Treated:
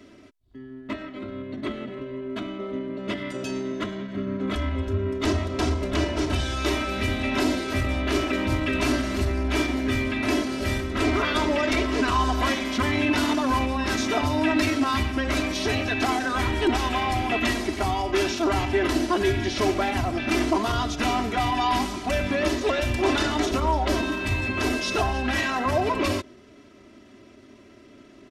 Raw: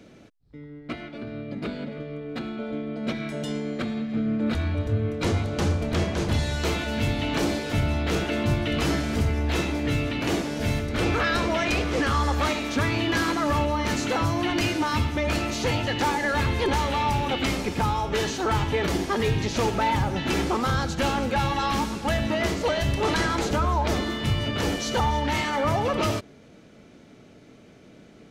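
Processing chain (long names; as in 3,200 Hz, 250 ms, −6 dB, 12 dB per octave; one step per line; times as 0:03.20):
comb filter 2.7 ms, depth 82%
pitch shifter −2 semitones
low-shelf EQ 72 Hz −8.5 dB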